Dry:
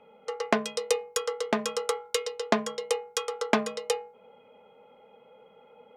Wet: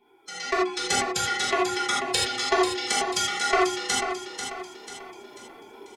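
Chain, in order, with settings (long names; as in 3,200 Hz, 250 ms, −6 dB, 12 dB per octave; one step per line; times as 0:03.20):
dynamic equaliser 590 Hz, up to −8 dB, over −41 dBFS, Q 1.5
in parallel at −5 dB: gain into a clipping stage and back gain 17.5 dB
on the sum: treble cut that deepens with the level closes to 1,200 Hz, closed at −24 dBFS
first-order pre-emphasis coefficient 0.8
phase-vocoder pitch shift with formants kept +9 semitones
on a send: repeating echo 491 ms, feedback 43%, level −8 dB
on the sum: reverb whose tail is shaped and stops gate 110 ms flat, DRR −5 dB
automatic gain control gain up to 12 dB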